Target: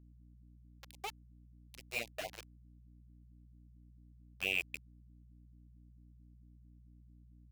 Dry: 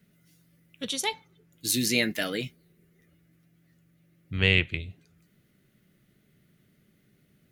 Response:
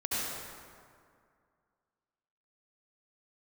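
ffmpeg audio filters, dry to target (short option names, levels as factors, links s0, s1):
-filter_complex "[0:a]asplit=3[s0][s1][s2];[s0]bandpass=f=730:t=q:w=8,volume=1[s3];[s1]bandpass=f=1090:t=q:w=8,volume=0.501[s4];[s2]bandpass=f=2440:t=q:w=8,volume=0.355[s5];[s3][s4][s5]amix=inputs=3:normalize=0,aeval=exprs='val(0)*gte(abs(val(0)),0.0106)':c=same,aeval=exprs='val(0)+0.001*(sin(2*PI*60*n/s)+sin(2*PI*2*60*n/s)/2+sin(2*PI*3*60*n/s)/3+sin(2*PI*4*60*n/s)/4+sin(2*PI*5*60*n/s)/5)':c=same,afftfilt=real='re*(1-between(b*sr/1024,230*pow(1500/230,0.5+0.5*sin(2*PI*4.5*pts/sr))/1.41,230*pow(1500/230,0.5+0.5*sin(2*PI*4.5*pts/sr))*1.41))':imag='im*(1-between(b*sr/1024,230*pow(1500/230,0.5+0.5*sin(2*PI*4.5*pts/sr))/1.41,230*pow(1500/230,0.5+0.5*sin(2*PI*4.5*pts/sr))*1.41))':win_size=1024:overlap=0.75,volume=1.26"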